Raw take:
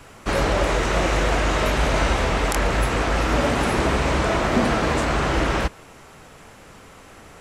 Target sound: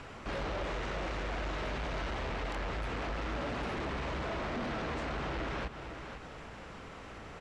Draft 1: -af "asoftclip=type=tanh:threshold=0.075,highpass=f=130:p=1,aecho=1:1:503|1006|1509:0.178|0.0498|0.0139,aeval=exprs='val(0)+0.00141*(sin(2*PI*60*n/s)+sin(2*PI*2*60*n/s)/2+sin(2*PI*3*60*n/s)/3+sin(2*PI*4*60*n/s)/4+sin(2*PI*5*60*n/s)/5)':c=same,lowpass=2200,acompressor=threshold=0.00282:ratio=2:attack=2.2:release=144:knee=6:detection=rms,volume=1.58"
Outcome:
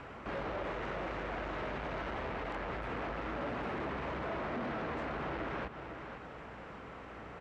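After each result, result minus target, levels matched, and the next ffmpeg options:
4 kHz band -5.0 dB; 125 Hz band -3.0 dB
-af "asoftclip=type=tanh:threshold=0.075,highpass=f=130:p=1,aecho=1:1:503|1006|1509:0.178|0.0498|0.0139,aeval=exprs='val(0)+0.00141*(sin(2*PI*60*n/s)+sin(2*PI*2*60*n/s)/2+sin(2*PI*3*60*n/s)/3+sin(2*PI*4*60*n/s)/4+sin(2*PI*5*60*n/s)/5)':c=same,lowpass=4500,acompressor=threshold=0.00282:ratio=2:attack=2.2:release=144:knee=6:detection=rms,volume=1.58"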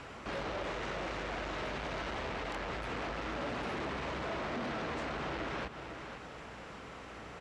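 125 Hz band -4.0 dB
-af "asoftclip=type=tanh:threshold=0.075,aecho=1:1:503|1006|1509:0.178|0.0498|0.0139,aeval=exprs='val(0)+0.00141*(sin(2*PI*60*n/s)+sin(2*PI*2*60*n/s)/2+sin(2*PI*3*60*n/s)/3+sin(2*PI*4*60*n/s)/4+sin(2*PI*5*60*n/s)/5)':c=same,lowpass=4500,acompressor=threshold=0.00282:ratio=2:attack=2.2:release=144:knee=6:detection=rms,volume=1.58"

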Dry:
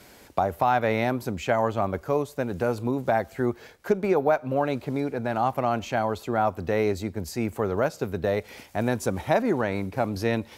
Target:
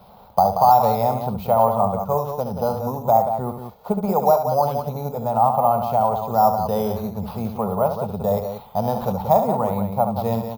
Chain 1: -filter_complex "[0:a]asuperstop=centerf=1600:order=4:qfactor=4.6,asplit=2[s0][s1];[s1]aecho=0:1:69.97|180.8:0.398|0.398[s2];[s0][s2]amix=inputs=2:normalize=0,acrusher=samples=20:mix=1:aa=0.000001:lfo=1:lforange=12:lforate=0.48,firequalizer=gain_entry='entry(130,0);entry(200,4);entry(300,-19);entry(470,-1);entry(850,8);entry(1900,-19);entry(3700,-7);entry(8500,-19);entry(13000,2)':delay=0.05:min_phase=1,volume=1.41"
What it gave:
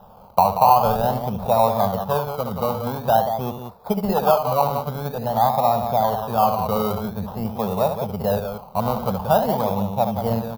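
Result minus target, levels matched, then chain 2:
decimation with a swept rate: distortion +12 dB
-filter_complex "[0:a]asuperstop=centerf=1600:order=4:qfactor=4.6,asplit=2[s0][s1];[s1]aecho=0:1:69.97|180.8:0.398|0.398[s2];[s0][s2]amix=inputs=2:normalize=0,acrusher=samples=6:mix=1:aa=0.000001:lfo=1:lforange=3.6:lforate=0.48,firequalizer=gain_entry='entry(130,0);entry(200,4);entry(300,-19);entry(470,-1);entry(850,8);entry(1900,-19);entry(3700,-7);entry(8500,-19);entry(13000,2)':delay=0.05:min_phase=1,volume=1.41"

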